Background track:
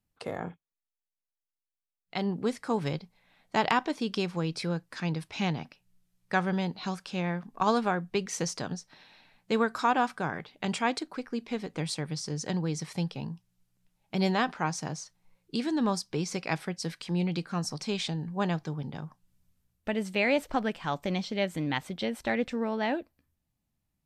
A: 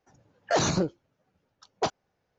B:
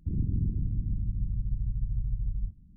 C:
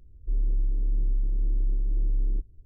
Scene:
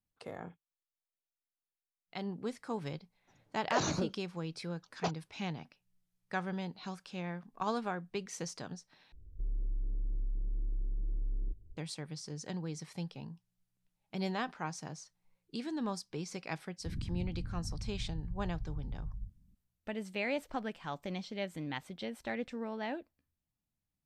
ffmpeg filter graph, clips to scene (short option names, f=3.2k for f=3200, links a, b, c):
-filter_complex "[0:a]volume=-9dB[a];[3:a]acompressor=threshold=-30dB:ratio=3:attack=0.57:release=142:knee=1:detection=peak[b];[a]asplit=2[c][d];[c]atrim=end=9.124[e];[b]atrim=end=2.65,asetpts=PTS-STARTPTS,volume=-3.5dB[f];[d]atrim=start=11.766[g];[1:a]atrim=end=2.38,asetpts=PTS-STARTPTS,volume=-8.5dB,afade=t=in:d=0.004:c=hsin,afade=t=out:st=2.376:d=0.004:c=hsin,adelay=141561S[h];[2:a]atrim=end=2.76,asetpts=PTS-STARTPTS,volume=-10.5dB,afade=t=in:d=0.004:c=hsin,afade=t=out:st=2.756:d=0.004:c=hsin,adelay=16790[i];[e][f]acrossfade=d=0.004:c1=hsin:c2=hsin[j];[j][g]acrossfade=d=0.004:c1=hsin:c2=hsin[k];[k][h][i]amix=inputs=3:normalize=0"